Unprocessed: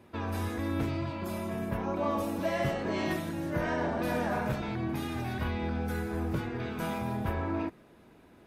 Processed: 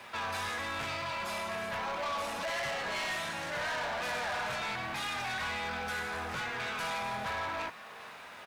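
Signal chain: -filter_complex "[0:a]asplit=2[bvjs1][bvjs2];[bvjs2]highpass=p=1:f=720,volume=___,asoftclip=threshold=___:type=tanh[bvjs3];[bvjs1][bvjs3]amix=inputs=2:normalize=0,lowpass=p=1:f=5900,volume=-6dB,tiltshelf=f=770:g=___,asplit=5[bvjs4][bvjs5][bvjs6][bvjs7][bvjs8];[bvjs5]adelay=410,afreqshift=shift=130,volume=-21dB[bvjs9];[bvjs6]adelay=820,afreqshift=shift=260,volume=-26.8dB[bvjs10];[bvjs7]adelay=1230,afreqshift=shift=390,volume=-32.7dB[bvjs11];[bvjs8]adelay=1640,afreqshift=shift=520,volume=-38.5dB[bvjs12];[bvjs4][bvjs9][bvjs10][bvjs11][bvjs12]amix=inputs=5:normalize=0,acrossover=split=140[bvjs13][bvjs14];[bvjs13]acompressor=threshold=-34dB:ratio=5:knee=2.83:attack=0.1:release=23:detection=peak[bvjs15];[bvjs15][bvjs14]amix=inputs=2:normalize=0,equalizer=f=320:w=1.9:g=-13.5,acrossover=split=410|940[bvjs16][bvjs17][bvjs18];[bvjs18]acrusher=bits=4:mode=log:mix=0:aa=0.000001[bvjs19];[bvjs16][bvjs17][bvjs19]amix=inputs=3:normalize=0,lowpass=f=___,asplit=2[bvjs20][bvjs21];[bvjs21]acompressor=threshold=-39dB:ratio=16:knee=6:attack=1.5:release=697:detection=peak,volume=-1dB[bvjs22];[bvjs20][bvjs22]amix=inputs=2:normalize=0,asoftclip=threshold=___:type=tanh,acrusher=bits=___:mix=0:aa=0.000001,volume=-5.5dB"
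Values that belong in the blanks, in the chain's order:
21dB, -18.5dB, -4.5, 9100, -25dB, 9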